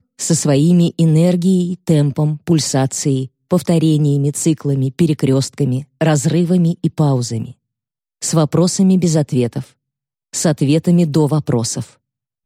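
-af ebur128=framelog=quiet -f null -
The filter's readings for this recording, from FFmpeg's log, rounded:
Integrated loudness:
  I:         -15.5 LUFS
  Threshold: -25.8 LUFS
Loudness range:
  LRA:         2.5 LU
  Threshold: -36.2 LUFS
  LRA low:   -17.5 LUFS
  LRA high:  -15.0 LUFS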